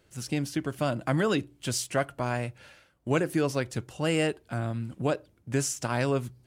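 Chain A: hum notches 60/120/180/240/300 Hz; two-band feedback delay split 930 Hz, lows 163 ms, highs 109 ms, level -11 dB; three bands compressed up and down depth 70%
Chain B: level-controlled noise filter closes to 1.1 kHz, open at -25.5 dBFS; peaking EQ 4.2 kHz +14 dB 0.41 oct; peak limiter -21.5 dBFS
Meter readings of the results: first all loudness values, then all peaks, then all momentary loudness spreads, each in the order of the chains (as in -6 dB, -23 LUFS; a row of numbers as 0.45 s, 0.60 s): -29.5 LUFS, -33.5 LUFS; -11.0 dBFS, -21.5 dBFS; 5 LU, 6 LU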